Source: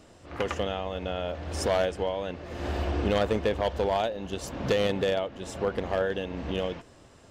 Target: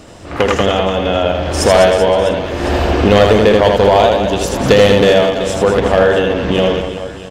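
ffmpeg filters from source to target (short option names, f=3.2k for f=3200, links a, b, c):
-af "aecho=1:1:80|200|380|650|1055:0.631|0.398|0.251|0.158|0.1,apsyclip=17dB,volume=-1.5dB"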